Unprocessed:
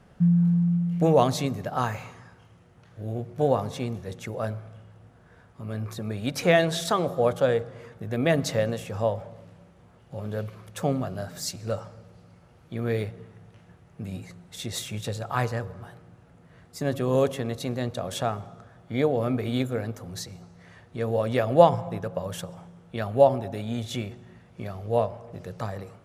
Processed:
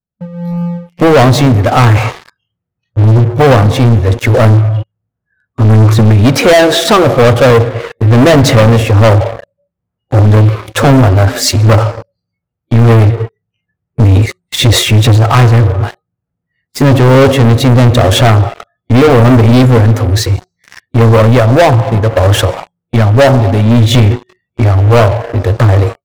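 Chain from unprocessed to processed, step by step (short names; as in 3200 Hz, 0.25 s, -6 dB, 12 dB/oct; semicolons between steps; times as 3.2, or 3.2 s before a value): spectral noise reduction 30 dB; tone controls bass +8 dB, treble -10 dB; AGC gain up to 16 dB; sample leveller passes 5; gain -1 dB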